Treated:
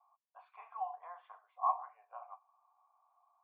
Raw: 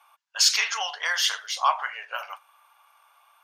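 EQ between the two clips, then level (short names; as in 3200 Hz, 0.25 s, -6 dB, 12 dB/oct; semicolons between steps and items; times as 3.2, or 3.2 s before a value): vocal tract filter a; bell 3400 Hz -5.5 dB 0.64 oct; -2.5 dB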